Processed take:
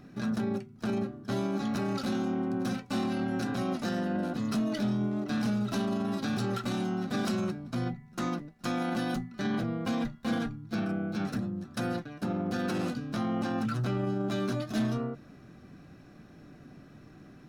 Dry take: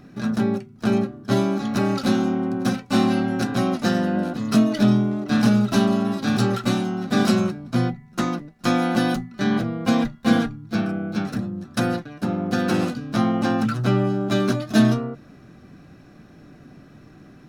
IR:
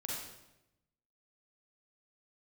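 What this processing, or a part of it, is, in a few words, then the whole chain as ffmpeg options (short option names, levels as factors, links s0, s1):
clipper into limiter: -af "asoftclip=type=hard:threshold=0.282,alimiter=limit=0.119:level=0:latency=1:release=28,volume=0.562"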